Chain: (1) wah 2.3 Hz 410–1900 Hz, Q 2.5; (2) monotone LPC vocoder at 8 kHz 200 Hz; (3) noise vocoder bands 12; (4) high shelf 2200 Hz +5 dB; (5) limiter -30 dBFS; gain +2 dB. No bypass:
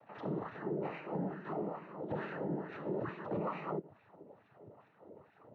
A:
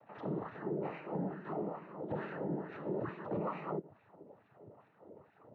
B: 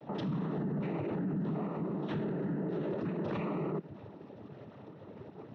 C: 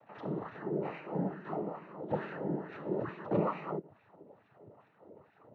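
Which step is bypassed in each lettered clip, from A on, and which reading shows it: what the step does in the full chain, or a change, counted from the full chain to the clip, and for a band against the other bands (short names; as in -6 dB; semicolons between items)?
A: 4, 2 kHz band -2.0 dB; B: 1, 2 kHz band -8.0 dB; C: 5, crest factor change +8.0 dB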